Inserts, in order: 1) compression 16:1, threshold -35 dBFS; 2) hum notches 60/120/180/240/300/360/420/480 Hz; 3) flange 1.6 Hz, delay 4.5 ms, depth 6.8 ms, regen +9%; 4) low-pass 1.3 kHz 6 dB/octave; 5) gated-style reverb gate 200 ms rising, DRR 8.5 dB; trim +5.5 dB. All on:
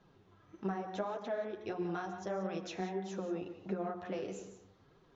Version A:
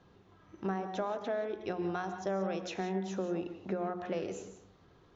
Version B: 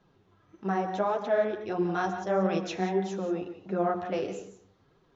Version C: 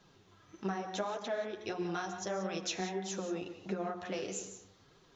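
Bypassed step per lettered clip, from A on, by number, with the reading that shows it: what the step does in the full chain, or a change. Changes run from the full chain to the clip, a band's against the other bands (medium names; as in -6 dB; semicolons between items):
3, loudness change +3.0 LU; 1, mean gain reduction 7.0 dB; 4, 4 kHz band +9.0 dB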